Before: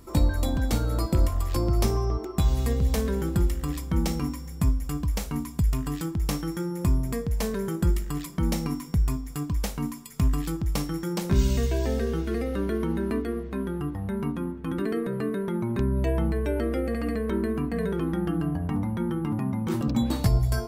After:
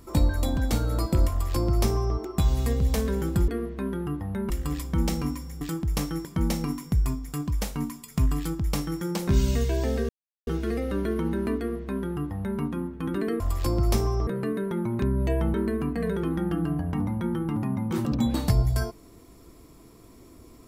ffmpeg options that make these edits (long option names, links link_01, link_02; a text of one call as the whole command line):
ffmpeg -i in.wav -filter_complex "[0:a]asplit=9[link_01][link_02][link_03][link_04][link_05][link_06][link_07][link_08][link_09];[link_01]atrim=end=3.482[link_10];[link_02]atrim=start=13.218:end=14.242[link_11];[link_03]atrim=start=3.478:end=4.592[link_12];[link_04]atrim=start=5.928:end=6.572[link_13];[link_05]atrim=start=8.268:end=12.11,asetpts=PTS-STARTPTS,afade=type=out:start_time=3.838:duration=0.004:curve=hsin,apad=pad_dur=0.38[link_14];[link_06]atrim=start=12.11:end=15.042,asetpts=PTS-STARTPTS,afade=type=in:duration=0.004:curve=hsin[link_15];[link_07]atrim=start=1.298:end=2.172[link_16];[link_08]atrim=start=15.038:end=16.312[link_17];[link_09]atrim=start=17.298[link_18];[link_10][link_11]acrossfade=duration=0.004:curve1=hsin:curve2=hsin[link_19];[link_19][link_12]acrossfade=duration=0.004:curve1=hsin:curve2=hsin[link_20];[link_20][link_13]acrossfade=duration=0.004:curve1=hsin:curve2=hsin[link_21];[link_14][link_15]concat=n=2:v=0:a=1[link_22];[link_21][link_22]acrossfade=duration=0.004:curve1=hsin:curve2=hsin[link_23];[link_23][link_16]acrossfade=duration=0.004:curve1=hsin:curve2=hsin[link_24];[link_24][link_17]acrossfade=duration=0.004:curve1=hsin:curve2=hsin[link_25];[link_25][link_18]acrossfade=duration=0.004:curve1=hsin:curve2=hsin" out.wav